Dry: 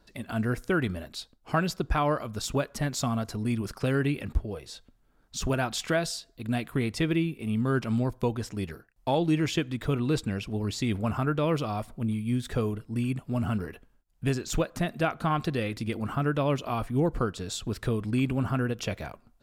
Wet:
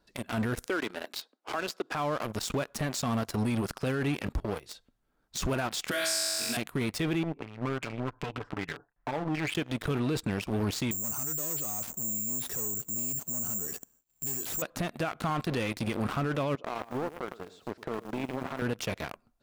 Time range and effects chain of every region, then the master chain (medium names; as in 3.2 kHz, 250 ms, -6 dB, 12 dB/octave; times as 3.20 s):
0.66–1.95 s: high-pass 290 Hz 24 dB/octave + treble shelf 9 kHz -7 dB + three bands compressed up and down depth 40%
5.91–6.57 s: tilt EQ +4 dB/octave + flutter echo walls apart 3.7 m, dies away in 1.2 s + three bands compressed up and down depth 40%
7.23–9.55 s: compression, threshold -35 dBFS + comb 6.9 ms, depth 61% + step-sequenced low-pass 5.2 Hz 920–2600 Hz
10.91–14.62 s: high-pass 150 Hz 6 dB/octave + bass shelf 490 Hz +6.5 dB + careless resampling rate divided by 6×, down none, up zero stuff
16.55–18.62 s: band-pass filter 630 Hz, Q 1 + compression 3:1, threshold -33 dBFS + bit-crushed delay 108 ms, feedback 35%, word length 9-bit, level -8 dB
whole clip: waveshaping leveller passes 3; bass shelf 120 Hz -6.5 dB; peak limiter -22 dBFS